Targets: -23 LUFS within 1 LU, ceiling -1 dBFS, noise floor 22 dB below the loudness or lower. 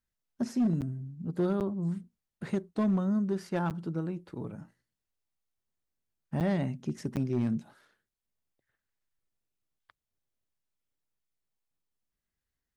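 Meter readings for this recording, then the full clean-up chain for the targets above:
clipped samples 0.5%; clipping level -22.0 dBFS; dropouts 5; longest dropout 8.4 ms; loudness -32.0 LUFS; peak level -22.0 dBFS; loudness target -23.0 LUFS
-> clip repair -22 dBFS; interpolate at 0.81/1.60/3.70/6.40/7.16 s, 8.4 ms; trim +9 dB

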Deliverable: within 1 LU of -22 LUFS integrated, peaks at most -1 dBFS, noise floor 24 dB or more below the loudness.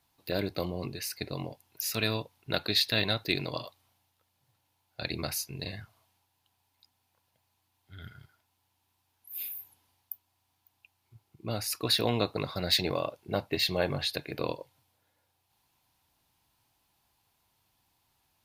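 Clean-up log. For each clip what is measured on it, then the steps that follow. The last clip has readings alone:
loudness -31.5 LUFS; peak level -9.5 dBFS; loudness target -22.0 LUFS
-> trim +9.5 dB; peak limiter -1 dBFS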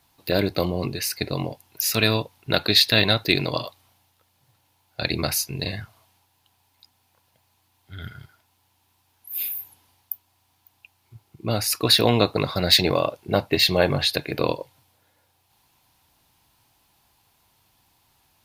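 loudness -22.0 LUFS; peak level -1.0 dBFS; noise floor -67 dBFS

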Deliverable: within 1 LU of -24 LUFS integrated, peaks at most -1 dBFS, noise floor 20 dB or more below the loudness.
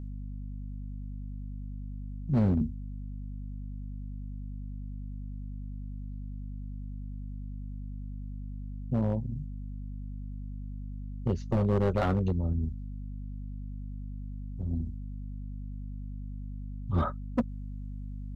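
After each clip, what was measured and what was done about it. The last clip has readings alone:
clipped samples 0.7%; clipping level -20.0 dBFS; hum 50 Hz; highest harmonic 250 Hz; hum level -36 dBFS; loudness -35.5 LUFS; peak level -20.0 dBFS; loudness target -24.0 LUFS
-> clip repair -20 dBFS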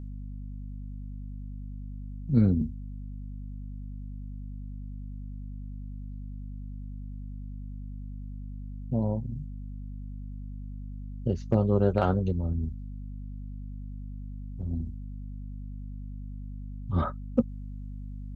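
clipped samples 0.0%; hum 50 Hz; highest harmonic 250 Hz; hum level -36 dBFS
-> hum notches 50/100/150/200/250 Hz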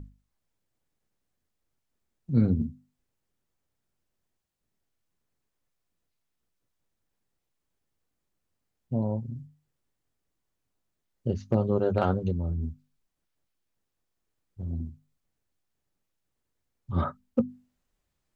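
hum not found; loudness -29.5 LUFS; peak level -11.0 dBFS; loudness target -24.0 LUFS
-> trim +5.5 dB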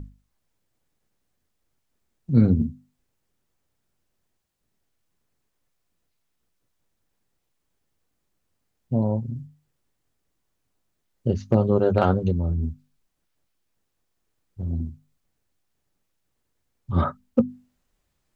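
loudness -24.0 LUFS; peak level -5.5 dBFS; noise floor -76 dBFS

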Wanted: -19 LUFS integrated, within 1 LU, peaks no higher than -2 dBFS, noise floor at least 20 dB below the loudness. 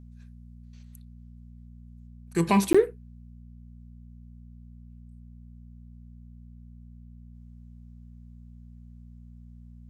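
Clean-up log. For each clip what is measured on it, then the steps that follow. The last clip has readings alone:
dropouts 1; longest dropout 15 ms; hum 60 Hz; highest harmonic 240 Hz; hum level -45 dBFS; loudness -23.5 LUFS; peak level -9.0 dBFS; loudness target -19.0 LUFS
-> interpolate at 2.73 s, 15 ms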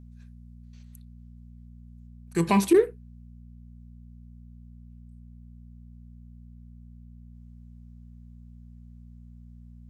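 dropouts 0; hum 60 Hz; highest harmonic 240 Hz; hum level -45 dBFS
-> de-hum 60 Hz, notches 4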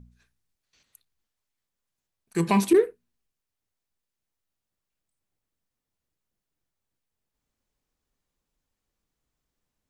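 hum not found; loudness -23.5 LUFS; peak level -9.0 dBFS; loudness target -19.0 LUFS
-> trim +4.5 dB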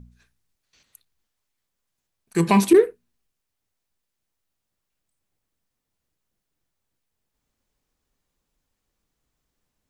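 loudness -19.0 LUFS; peak level -4.5 dBFS; noise floor -81 dBFS

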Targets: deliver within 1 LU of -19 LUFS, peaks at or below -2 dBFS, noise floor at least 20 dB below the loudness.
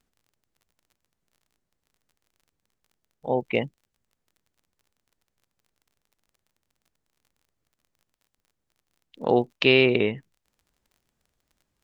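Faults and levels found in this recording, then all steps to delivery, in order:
tick rate 32 per s; loudness -23.0 LUFS; peak level -3.5 dBFS; loudness target -19.0 LUFS
-> de-click; trim +4 dB; peak limiter -2 dBFS

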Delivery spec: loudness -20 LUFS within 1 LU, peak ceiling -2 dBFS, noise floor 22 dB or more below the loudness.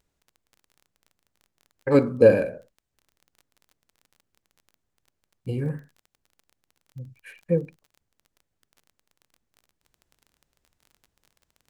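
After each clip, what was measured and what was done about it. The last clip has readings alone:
tick rate 24 per s; loudness -23.0 LUFS; peak level -3.5 dBFS; loudness target -20.0 LUFS
-> de-click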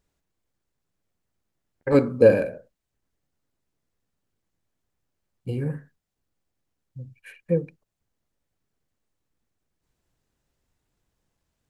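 tick rate 0 per s; loudness -22.5 LUFS; peak level -3.5 dBFS; loudness target -20.0 LUFS
-> trim +2.5 dB; peak limiter -2 dBFS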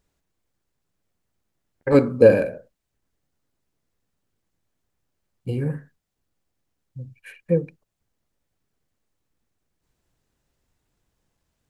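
loudness -20.0 LUFS; peak level -2.0 dBFS; noise floor -79 dBFS

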